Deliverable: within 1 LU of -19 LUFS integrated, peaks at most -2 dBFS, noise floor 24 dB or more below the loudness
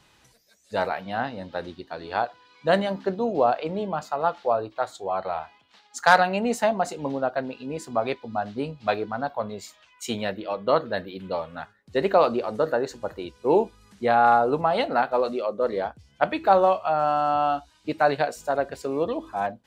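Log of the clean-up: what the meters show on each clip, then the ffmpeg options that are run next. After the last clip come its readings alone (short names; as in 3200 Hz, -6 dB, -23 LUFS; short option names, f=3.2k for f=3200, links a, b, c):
loudness -25.0 LUFS; peak -4.0 dBFS; loudness target -19.0 LUFS
-> -af "volume=6dB,alimiter=limit=-2dB:level=0:latency=1"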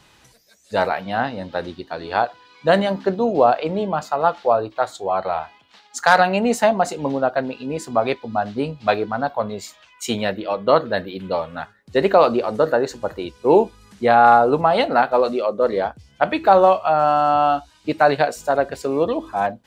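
loudness -19.5 LUFS; peak -2.0 dBFS; noise floor -54 dBFS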